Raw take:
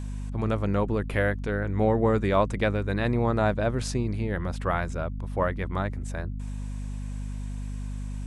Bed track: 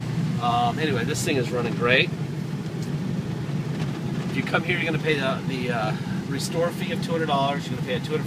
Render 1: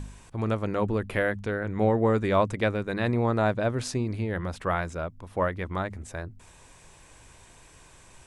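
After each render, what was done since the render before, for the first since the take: de-hum 50 Hz, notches 5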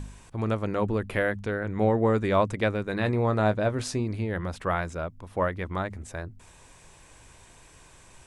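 2.91–4.00 s: doubling 19 ms -11 dB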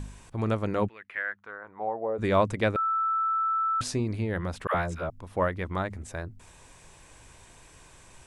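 0.87–2.18 s: band-pass filter 2.5 kHz -> 560 Hz, Q 3.2; 2.76–3.81 s: bleep 1.32 kHz -23.5 dBFS; 4.67–5.10 s: phase dispersion lows, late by 76 ms, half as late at 650 Hz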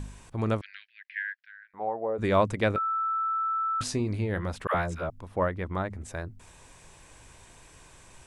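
0.61–1.74 s: Chebyshev band-pass 1.6–5.4 kHz, order 5; 2.68–4.53 s: doubling 20 ms -12 dB; 5.27–6.01 s: treble shelf 2.3 kHz -6.5 dB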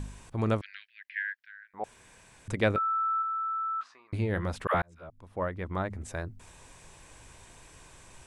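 1.84–2.48 s: room tone; 3.22–4.13 s: ladder band-pass 1.3 kHz, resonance 65%; 4.82–5.93 s: fade in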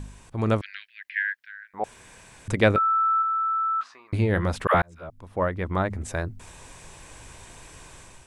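level rider gain up to 7 dB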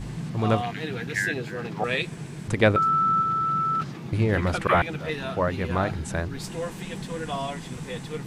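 add bed track -8 dB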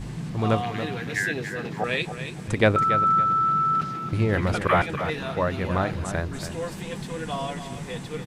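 feedback delay 281 ms, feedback 25%, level -10 dB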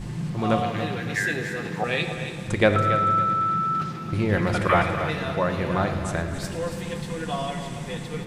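thinning echo 113 ms, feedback 83%, high-pass 590 Hz, level -16 dB; simulated room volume 2200 m³, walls mixed, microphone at 0.9 m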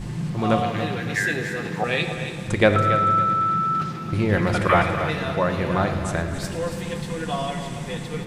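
trim +2 dB

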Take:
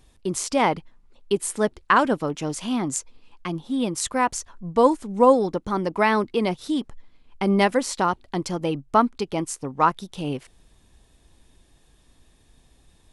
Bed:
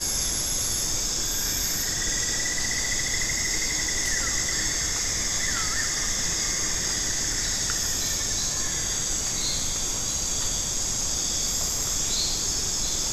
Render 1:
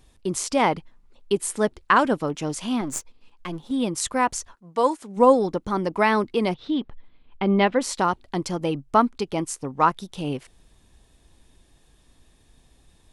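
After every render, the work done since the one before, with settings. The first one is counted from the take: 2.81–3.71 s: partial rectifier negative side -7 dB; 4.53–5.16 s: high-pass 1.1 kHz -> 360 Hz 6 dB/octave; 6.54–7.81 s: Chebyshev low-pass 3.6 kHz, order 3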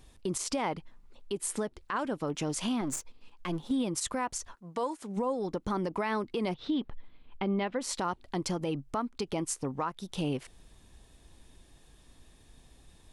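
compression 10:1, threshold -26 dBFS, peak gain reduction 16 dB; peak limiter -22 dBFS, peak gain reduction 11 dB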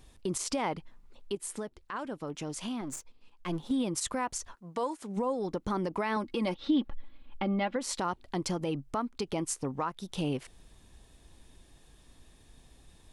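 1.35–3.46 s: gain -5 dB; 6.16–7.76 s: comb 3.6 ms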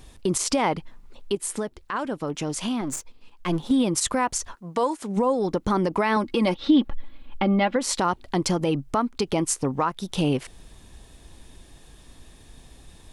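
trim +9 dB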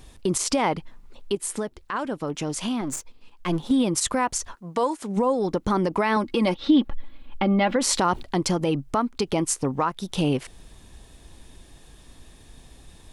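7.51–8.23 s: level flattener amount 50%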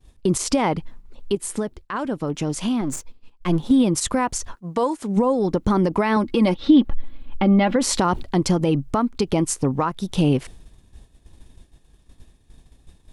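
expander -38 dBFS; bass shelf 340 Hz +7.5 dB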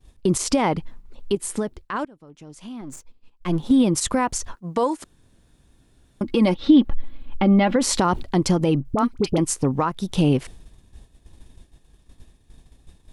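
2.05–3.78 s: fade in quadratic, from -22.5 dB; 5.04–6.21 s: room tone; 8.80–9.38 s: phase dispersion highs, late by 51 ms, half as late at 990 Hz

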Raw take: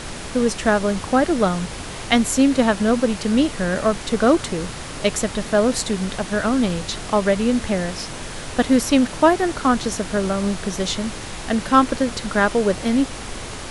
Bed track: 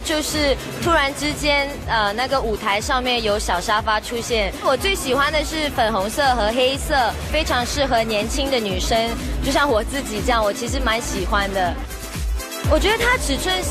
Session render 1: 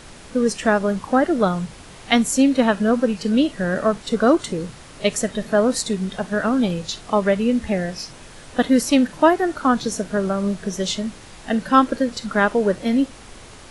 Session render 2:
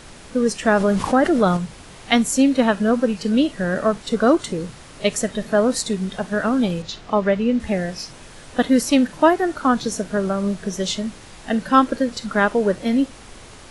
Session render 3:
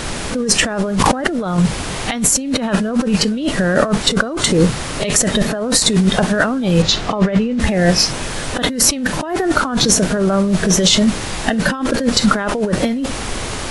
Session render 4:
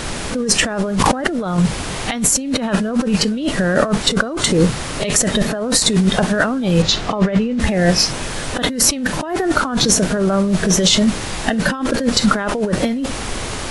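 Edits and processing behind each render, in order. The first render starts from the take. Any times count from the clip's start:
noise print and reduce 10 dB
0.67–1.57 s: level flattener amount 50%; 6.82–7.60 s: distance through air 95 m
compressor with a negative ratio -27 dBFS, ratio -1; loudness maximiser +11 dB
trim -1 dB

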